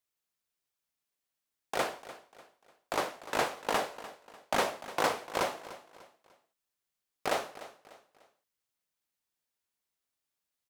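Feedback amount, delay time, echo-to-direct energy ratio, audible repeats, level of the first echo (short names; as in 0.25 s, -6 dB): 37%, 0.297 s, -15.5 dB, 3, -16.0 dB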